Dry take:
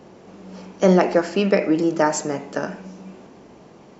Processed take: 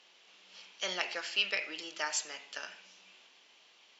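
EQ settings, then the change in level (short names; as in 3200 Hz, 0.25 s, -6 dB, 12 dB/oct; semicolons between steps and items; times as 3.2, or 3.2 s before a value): band-pass 3200 Hz, Q 2.5; tilt +2.5 dB/oct; 0.0 dB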